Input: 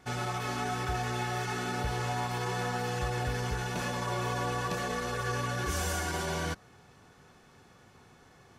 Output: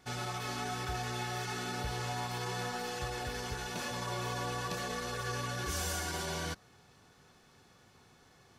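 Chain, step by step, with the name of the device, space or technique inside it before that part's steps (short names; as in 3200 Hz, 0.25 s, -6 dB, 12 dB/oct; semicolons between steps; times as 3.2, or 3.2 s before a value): presence and air boost (bell 4300 Hz +5 dB 1.1 oct; high shelf 9700 Hz +6.5 dB); 2.67–3.91 notches 60/120/180 Hz; gain -5 dB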